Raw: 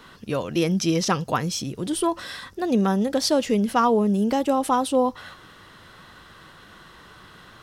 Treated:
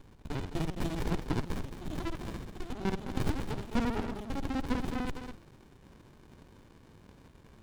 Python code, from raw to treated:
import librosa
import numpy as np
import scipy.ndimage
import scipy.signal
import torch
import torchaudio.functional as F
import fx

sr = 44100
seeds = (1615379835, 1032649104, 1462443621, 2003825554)

y = fx.local_reverse(x, sr, ms=50.0)
y = scipy.signal.sosfilt(scipy.signal.butter(2, 430.0, 'highpass', fs=sr, output='sos'), y)
y = fx.peak_eq(y, sr, hz=3700.0, db=14.5, octaves=0.42)
y = y + 10.0 ** (-8.5 / 20.0) * np.pad(y, (int(212 * sr / 1000.0), 0))[:len(y)]
y = fx.running_max(y, sr, window=65)
y = y * 10.0 ** (-6.5 / 20.0)